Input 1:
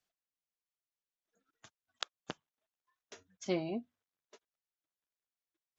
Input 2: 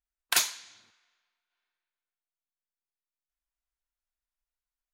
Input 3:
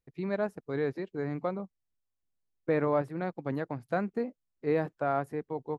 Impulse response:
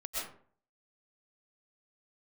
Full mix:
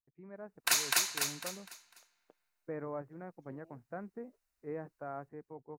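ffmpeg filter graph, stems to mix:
-filter_complex "[0:a]acompressor=threshold=-39dB:ratio=6,bandpass=f=490:t=q:w=1.8:csg=0,volume=-19.5dB[a];[1:a]bandreject=f=3.3k:w=6.1,adelay=350,volume=0.5dB,asplit=2[b][c];[c]volume=-5.5dB[d];[2:a]lowpass=f=2k:w=0.5412,lowpass=f=2k:w=1.3066,volume=-19dB[e];[d]aecho=0:1:250|500|750|1000|1250:1|0.34|0.116|0.0393|0.0134[f];[a][b][e][f]amix=inputs=4:normalize=0,dynaudnorm=f=140:g=7:m=6dB,alimiter=limit=-16dB:level=0:latency=1:release=290"

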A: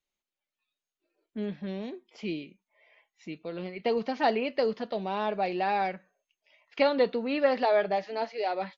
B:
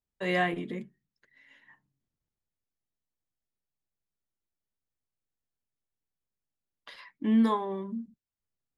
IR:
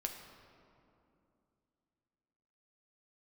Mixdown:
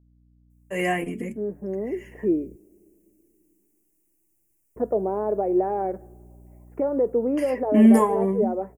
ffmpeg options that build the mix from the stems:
-filter_complex "[0:a]alimiter=limit=-22.5dB:level=0:latency=1:release=203,bandpass=f=390:t=q:w=2.1:csg=0,aeval=exprs='val(0)+0.000891*(sin(2*PI*60*n/s)+sin(2*PI*2*60*n/s)/2+sin(2*PI*3*60*n/s)/3+sin(2*PI*4*60*n/s)/4+sin(2*PI*5*60*n/s)/5)':c=same,volume=3dB,asplit=3[a][b][c];[a]atrim=end=2.56,asetpts=PTS-STARTPTS,afade=t=out:st=2.556:d=0.004:c=hsin[d];[b]atrim=start=2.56:end=4.76,asetpts=PTS-STARTPTS,volume=0[e];[c]atrim=start=4.76,asetpts=PTS-STARTPTS,afade=t=in:d=0.004:c=hsin[f];[d][e][f]concat=n=3:v=0:a=1,asplit=2[g][h];[h]volume=-20.5dB[i];[1:a]highshelf=f=2k:t=q:w=3:g=13.5,aphaser=in_gain=1:out_gain=1:delay=4.7:decay=0.3:speed=0.77:type=triangular,adelay=500,volume=1.5dB[j];[2:a]atrim=start_sample=2205[k];[i][k]afir=irnorm=-1:irlink=0[l];[g][j][l]amix=inputs=3:normalize=0,dynaudnorm=f=140:g=11:m=11dB,asuperstop=centerf=3700:order=4:qfactor=0.53"

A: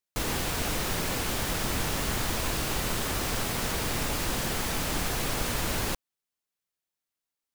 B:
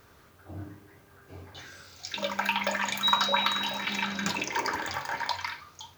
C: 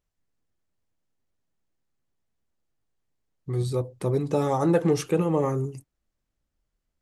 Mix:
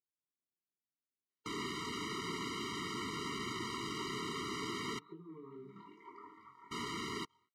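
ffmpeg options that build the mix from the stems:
-filter_complex "[0:a]asoftclip=type=hard:threshold=-26dB,adelay=1300,volume=-3.5dB,asplit=3[a][b][c];[a]atrim=end=4.99,asetpts=PTS-STARTPTS,afade=t=out:st=4.986:d=0.004:c=hsin[d];[b]atrim=start=4.99:end=6.71,asetpts=PTS-STARTPTS,volume=0[e];[c]atrim=start=6.71,asetpts=PTS-STARTPTS,afade=t=in:d=0.004:c=hsin[f];[d][e][f]concat=n=3:v=0:a=1[g];[1:a]lowpass=1.4k,acrusher=bits=8:mix=0:aa=0.000001,adelay=1500,volume=-14dB[h];[2:a]lowpass=1k,volume=-13dB,asplit=2[i][j];[j]apad=whole_len=329537[k];[h][k]sidechaincompress=threshold=-41dB:ratio=8:attack=16:release=355[l];[l][i]amix=inputs=2:normalize=0,flanger=delay=18:depth=6.6:speed=2.5,acompressor=threshold=-43dB:ratio=10,volume=0dB[m];[g][m]amix=inputs=2:normalize=0,highpass=220,lowpass=4.7k,afftfilt=real='re*eq(mod(floor(b*sr/1024/460),2),0)':imag='im*eq(mod(floor(b*sr/1024/460),2),0)':win_size=1024:overlap=0.75"

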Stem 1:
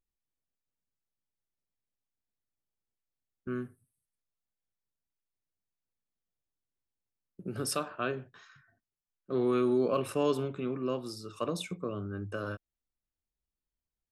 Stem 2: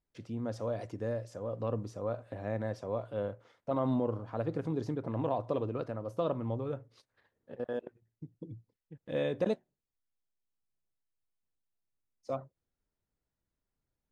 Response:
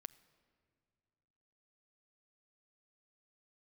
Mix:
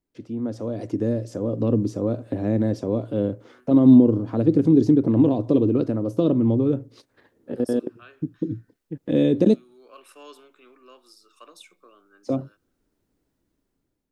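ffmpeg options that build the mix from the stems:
-filter_complex "[0:a]highpass=1.2k,volume=-9.5dB,asplit=2[a][b];[b]volume=-5dB[c];[1:a]dynaudnorm=f=350:g=5:m=11dB,volume=0dB,asplit=2[d][e];[e]apad=whole_len=622409[f];[a][f]sidechaincompress=threshold=-26dB:ratio=8:attack=6.1:release=745[g];[2:a]atrim=start_sample=2205[h];[c][h]afir=irnorm=-1:irlink=0[i];[g][d][i]amix=inputs=3:normalize=0,equalizer=f=300:w=1.2:g=12.5,acrossover=split=400|3000[j][k][l];[k]acompressor=threshold=-36dB:ratio=3[m];[j][m][l]amix=inputs=3:normalize=0"

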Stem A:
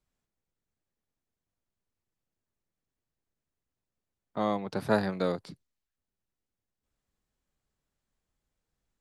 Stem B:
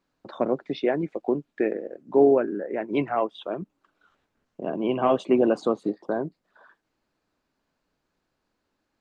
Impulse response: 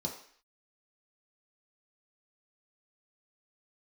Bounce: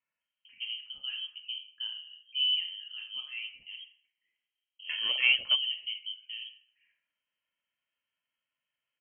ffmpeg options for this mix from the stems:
-filter_complex "[0:a]highpass=680,aecho=1:1:2.5:0.8,acompressor=threshold=-38dB:ratio=10,volume=0.5dB,asplit=3[a][b][c];[a]atrim=end=2.48,asetpts=PTS-STARTPTS,afade=t=out:st=2.476:d=0.004:c=hsin[d];[b]atrim=start=2.48:end=4.89,asetpts=PTS-STARTPTS,volume=0[e];[c]atrim=start=4.89,asetpts=PTS-STARTPTS,afade=t=in:d=0.004:c=hsin[f];[d][e][f]concat=n=3:v=0:a=1,asplit=2[g][h];[1:a]adelay=200,volume=-1.5dB,asplit=2[i][j];[j]volume=-16dB[k];[h]apad=whole_len=406137[l];[i][l]sidechaingate=range=-33dB:threshold=-55dB:ratio=16:detection=peak[m];[2:a]atrim=start_sample=2205[n];[k][n]afir=irnorm=-1:irlink=0[o];[g][m][o]amix=inputs=3:normalize=0,highpass=f=390:p=1,lowpass=f=2.9k:t=q:w=0.5098,lowpass=f=2.9k:t=q:w=0.6013,lowpass=f=2.9k:t=q:w=0.9,lowpass=f=2.9k:t=q:w=2.563,afreqshift=-3400,equalizer=f=750:w=1.2:g=-4"

